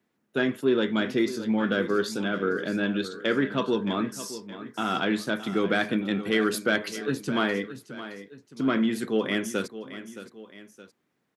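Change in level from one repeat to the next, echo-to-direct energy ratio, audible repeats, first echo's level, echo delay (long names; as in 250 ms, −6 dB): −6.5 dB, −12.5 dB, 2, −13.5 dB, 619 ms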